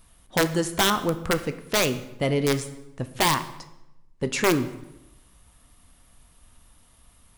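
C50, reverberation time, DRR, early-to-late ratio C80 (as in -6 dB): 13.5 dB, 0.90 s, 10.0 dB, 15.5 dB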